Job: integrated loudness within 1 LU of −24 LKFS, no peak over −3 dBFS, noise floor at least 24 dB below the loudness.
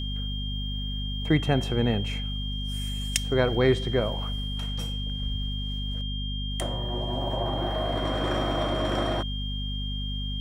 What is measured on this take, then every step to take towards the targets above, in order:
mains hum 50 Hz; hum harmonics up to 250 Hz; level of the hum −29 dBFS; interfering tone 3,200 Hz; level of the tone −35 dBFS; integrated loudness −28.5 LKFS; sample peak −5.5 dBFS; target loudness −24.0 LKFS
→ mains-hum notches 50/100/150/200/250 Hz
notch filter 3,200 Hz, Q 30
level +4.5 dB
brickwall limiter −3 dBFS

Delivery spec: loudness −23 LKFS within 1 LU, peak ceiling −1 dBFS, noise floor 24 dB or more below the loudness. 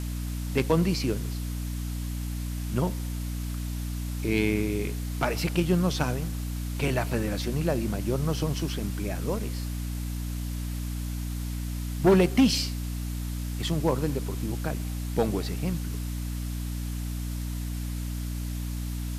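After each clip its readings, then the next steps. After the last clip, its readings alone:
mains hum 60 Hz; hum harmonics up to 300 Hz; level of the hum −29 dBFS; background noise floor −32 dBFS; target noise floor −54 dBFS; integrated loudness −29.5 LKFS; sample peak −12.0 dBFS; target loudness −23.0 LKFS
→ hum removal 60 Hz, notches 5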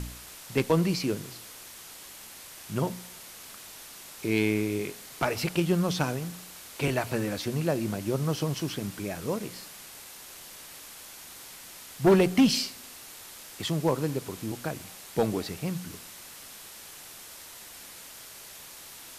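mains hum none found; background noise floor −46 dBFS; target noise floor −53 dBFS
→ noise reduction from a noise print 7 dB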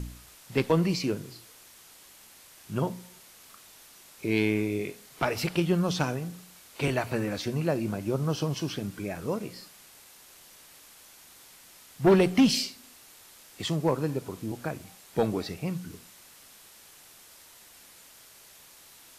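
background noise floor −53 dBFS; integrated loudness −28.5 LKFS; sample peak −12.5 dBFS; target loudness −23.0 LKFS
→ level +5.5 dB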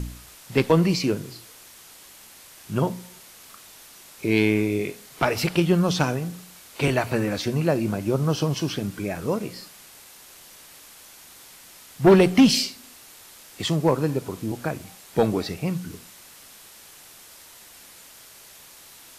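integrated loudness −23.0 LKFS; sample peak −7.0 dBFS; background noise floor −48 dBFS

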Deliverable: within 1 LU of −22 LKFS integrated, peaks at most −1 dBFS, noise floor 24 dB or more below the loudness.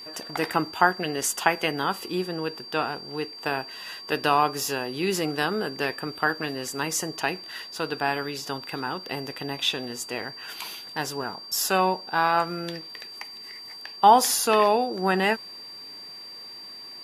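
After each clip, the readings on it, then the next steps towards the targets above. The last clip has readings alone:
interfering tone 4,700 Hz; level of the tone −39 dBFS; integrated loudness −26.0 LKFS; sample peak −2.5 dBFS; target loudness −22.0 LKFS
→ notch filter 4,700 Hz, Q 30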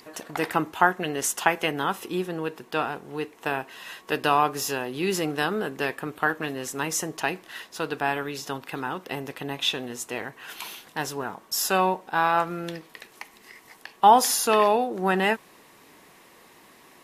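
interfering tone none found; integrated loudness −26.0 LKFS; sample peak −2.5 dBFS; target loudness −22.0 LKFS
→ level +4 dB
brickwall limiter −1 dBFS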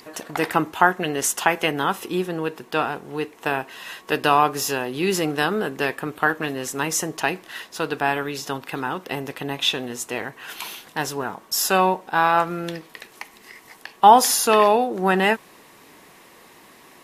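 integrated loudness −22.0 LKFS; sample peak −1.0 dBFS; background noise floor −50 dBFS

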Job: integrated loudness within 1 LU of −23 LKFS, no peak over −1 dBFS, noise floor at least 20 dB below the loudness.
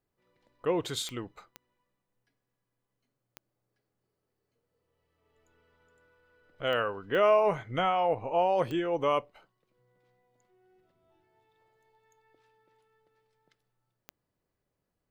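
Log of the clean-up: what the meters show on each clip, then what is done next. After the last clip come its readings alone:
number of clicks 7; integrated loudness −28.5 LKFS; sample peak −13.5 dBFS; target loudness −23.0 LKFS
→ click removal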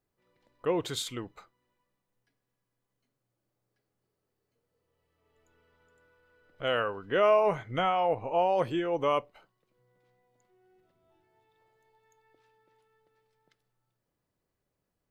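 number of clicks 0; integrated loudness −28.5 LKFS; sample peak −13.5 dBFS; target loudness −23.0 LKFS
→ level +5.5 dB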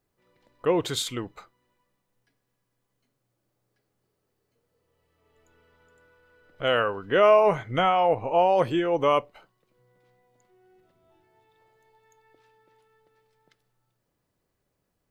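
integrated loudness −23.0 LKFS; sample peak −8.0 dBFS; background noise floor −78 dBFS

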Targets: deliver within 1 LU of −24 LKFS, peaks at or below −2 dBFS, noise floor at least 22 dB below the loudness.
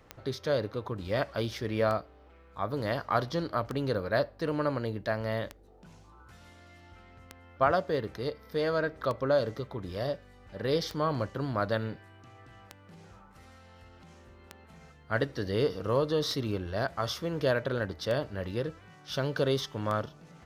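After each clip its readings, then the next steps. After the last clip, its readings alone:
number of clicks 12; integrated loudness −31.5 LKFS; sample peak −11.0 dBFS; target loudness −24.0 LKFS
→ click removal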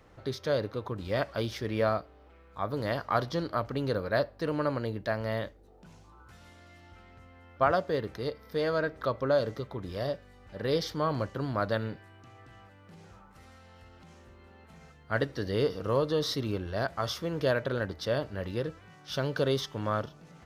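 number of clicks 0; integrated loudness −31.5 LKFS; sample peak −11.0 dBFS; target loudness −24.0 LKFS
→ level +7.5 dB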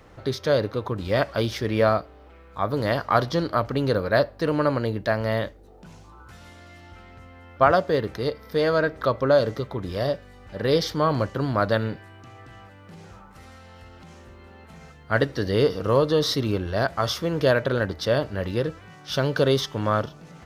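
integrated loudness −24.0 LKFS; sample peak −3.5 dBFS; background noise floor −48 dBFS

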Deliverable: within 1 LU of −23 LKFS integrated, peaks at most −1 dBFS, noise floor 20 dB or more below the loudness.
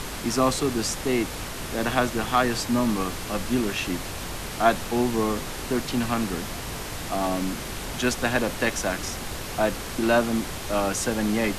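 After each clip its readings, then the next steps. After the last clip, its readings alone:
background noise floor −34 dBFS; target noise floor −46 dBFS; integrated loudness −26.0 LKFS; sample peak −7.0 dBFS; target loudness −23.0 LKFS
→ noise reduction from a noise print 12 dB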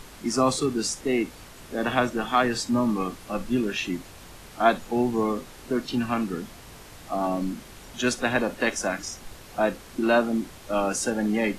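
background noise floor −46 dBFS; target noise floor −47 dBFS
→ noise reduction from a noise print 6 dB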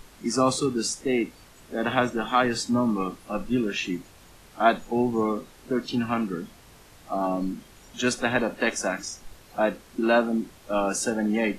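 background noise floor −52 dBFS; integrated loudness −26.5 LKFS; sample peak −7.0 dBFS; target loudness −23.0 LKFS
→ level +3.5 dB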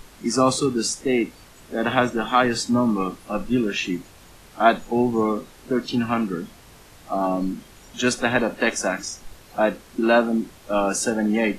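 integrated loudness −23.0 LKFS; sample peak −3.5 dBFS; background noise floor −48 dBFS

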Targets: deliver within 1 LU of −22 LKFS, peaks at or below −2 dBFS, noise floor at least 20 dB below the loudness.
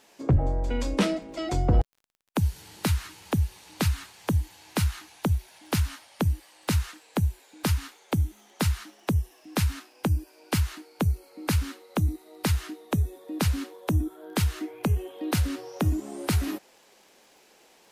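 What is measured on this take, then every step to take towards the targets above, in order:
crackle rate 20 per second; integrated loudness −29.0 LKFS; sample peak −13.0 dBFS; target loudness −22.0 LKFS
→ click removal
level +7 dB

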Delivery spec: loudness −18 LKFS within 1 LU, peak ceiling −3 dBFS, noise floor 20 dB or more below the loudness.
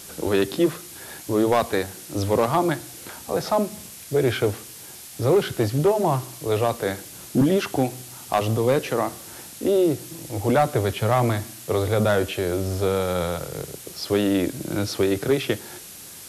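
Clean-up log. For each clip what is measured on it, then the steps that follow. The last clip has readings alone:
share of clipped samples 0.6%; peaks flattened at −12.0 dBFS; background noise floor −41 dBFS; target noise floor −44 dBFS; integrated loudness −23.5 LKFS; sample peak −12.0 dBFS; target loudness −18.0 LKFS
→ clipped peaks rebuilt −12 dBFS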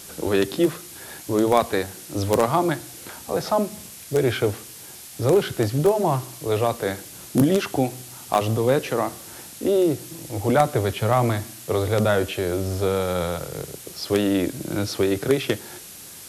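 share of clipped samples 0.0%; background noise floor −41 dBFS; target noise floor −43 dBFS
→ broadband denoise 6 dB, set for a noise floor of −41 dBFS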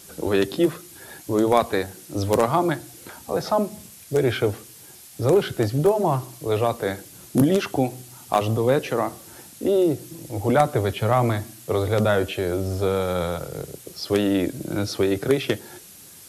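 background noise floor −45 dBFS; integrated loudness −23.0 LKFS; sample peak −3.0 dBFS; target loudness −18.0 LKFS
→ level +5 dB
brickwall limiter −3 dBFS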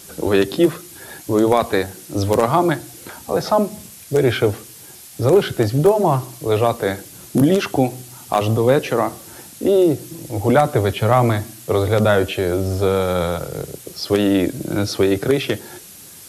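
integrated loudness −18.5 LKFS; sample peak −3.0 dBFS; background noise floor −40 dBFS

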